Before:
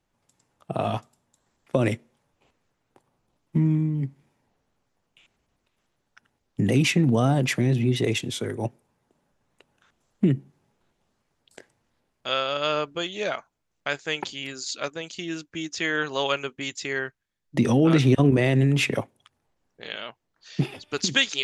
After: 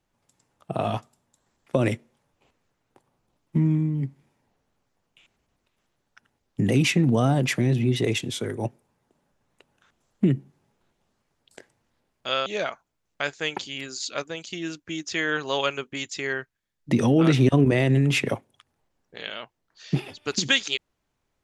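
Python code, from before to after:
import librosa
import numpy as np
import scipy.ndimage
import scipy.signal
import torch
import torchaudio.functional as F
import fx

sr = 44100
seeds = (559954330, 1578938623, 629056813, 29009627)

y = fx.edit(x, sr, fx.cut(start_s=12.46, length_s=0.66), tone=tone)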